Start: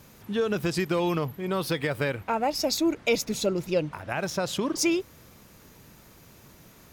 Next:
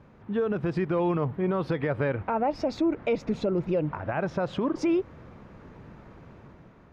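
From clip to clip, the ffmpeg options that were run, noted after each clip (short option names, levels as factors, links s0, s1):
-af "lowpass=1500,dynaudnorm=f=150:g=9:m=2.11,alimiter=limit=0.126:level=0:latency=1:release=130"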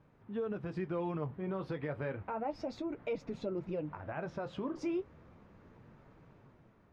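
-af "flanger=delay=6.2:depth=9.2:regen=-48:speed=0.32:shape=triangular,volume=0.447"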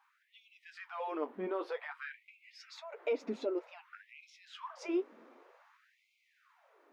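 -af "afftfilt=real='re*gte(b*sr/1024,210*pow(2100/210,0.5+0.5*sin(2*PI*0.53*pts/sr)))':imag='im*gte(b*sr/1024,210*pow(2100/210,0.5+0.5*sin(2*PI*0.53*pts/sr)))':win_size=1024:overlap=0.75,volume=1.5"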